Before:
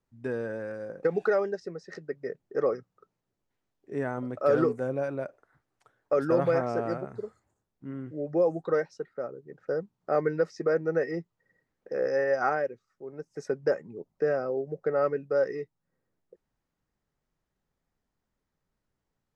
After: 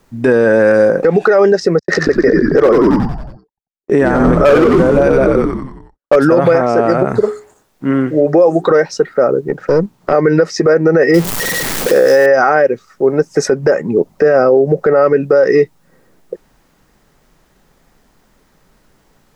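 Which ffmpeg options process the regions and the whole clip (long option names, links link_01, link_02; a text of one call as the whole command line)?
ffmpeg -i in.wav -filter_complex "[0:a]asettb=1/sr,asplit=3[link_01][link_02][link_03];[link_01]atrim=end=1.794[link_04];[link_02]atrim=start=1.79:end=6.16,asetpts=PTS-STARTPTS,afade=type=in:duration=0.004:curve=qsin,afade=type=out:start_time=4.366:duration=0.004:curve=qsin,agate=range=-57dB:threshold=-52dB:ratio=16:release=100:detection=peak,asoftclip=type=hard:threshold=-20.5dB,asplit=8[link_05][link_06][link_07][link_08][link_09][link_10][link_11][link_12];[link_06]adelay=91,afreqshift=-81,volume=-4dB[link_13];[link_07]adelay=182,afreqshift=-162,volume=-9.2dB[link_14];[link_08]adelay=273,afreqshift=-243,volume=-14.4dB[link_15];[link_09]adelay=364,afreqshift=-324,volume=-19.6dB[link_16];[link_10]adelay=455,afreqshift=-405,volume=-24.8dB[link_17];[link_11]adelay=546,afreqshift=-486,volume=-30dB[link_18];[link_12]adelay=637,afreqshift=-567,volume=-35.2dB[link_19];[link_05][link_13][link_14][link_15][link_16][link_17][link_18][link_19]amix=inputs=8:normalize=0,atrim=end_sample=192717[link_20];[link_03]atrim=start=6.156[link_21];[link_04][link_20]acrossfade=duration=0.004:curve1=hsin:curve2=qsin[link_22];[link_22][link_21]acrossfade=duration=0.004:curve1=qsin:curve2=hsin,asettb=1/sr,asplit=3[link_23][link_24][link_25];[link_23]atrim=end=7.224[link_26];[link_24]atrim=start=7.22:end=8.71,asetpts=PTS-STARTPTS,afade=type=in:duration=0.004:curve=qsin,afade=type=out:start_time=1.486:duration=0.004:curve=qsin,lowshelf=frequency=350:gain=-7.5,bandreject=frequency=60:width_type=h:width=6,bandreject=frequency=120:width_type=h:width=6,bandreject=frequency=180:width_type=h:width=6,bandreject=frequency=240:width_type=h:width=6,bandreject=frequency=300:width_type=h:width=6,bandreject=frequency=360:width_type=h:width=6,bandreject=frequency=420:width_type=h:width=6[link_27];[link_25]atrim=start=8.706[link_28];[link_26][link_27]acrossfade=duration=0.004:curve1=hsin:curve2=qsin[link_29];[link_29][link_28]acrossfade=duration=0.004:curve1=qsin:curve2=hsin,asettb=1/sr,asplit=3[link_30][link_31][link_32];[link_30]atrim=end=9.484[link_33];[link_31]atrim=start=9.48:end=10.13,asetpts=PTS-STARTPTS,afade=type=in:duration=0.004:curve=qsin,afade=type=out:start_time=0.646:duration=0.004:curve=qsin,acrossover=split=330|3000[link_34][link_35][link_36];[link_35]acompressor=threshold=-40dB:ratio=2.5:attack=3.2:release=140:knee=2.83:detection=peak[link_37];[link_34][link_37][link_36]amix=inputs=3:normalize=0,aeval=exprs='(tanh(28.2*val(0)+0.4)-tanh(0.4))/28.2':channel_layout=same[link_38];[link_32]atrim=start=10.126[link_39];[link_33][link_38]acrossfade=duration=0.004:curve1=hsin:curve2=qsin[link_40];[link_40][link_39]acrossfade=duration=0.004:curve1=qsin:curve2=hsin,asettb=1/sr,asplit=3[link_41][link_42][link_43];[link_41]atrim=end=11.144[link_44];[link_42]atrim=start=11.14:end=12.26,asetpts=PTS-STARTPTS,afade=type=in:duration=0.004:curve=qsin,afade=type=out:start_time=1.116:duration=0.004:curve=qsin,aeval=exprs='val(0)+0.5*0.00631*sgn(val(0))':channel_layout=same,highshelf=frequency=5100:gain=9.5[link_45];[link_43]atrim=start=12.256[link_46];[link_44][link_45]acrossfade=duration=0.004:curve1=hsin:curve2=qsin[link_47];[link_47][link_46]acrossfade=duration=0.004:curve1=qsin:curve2=hsin,acompressor=threshold=-30dB:ratio=6,equalizer=frequency=90:width_type=o:width=1:gain=-8.5,alimiter=level_in=31dB:limit=-1dB:release=50:level=0:latency=1,volume=-1dB" out.wav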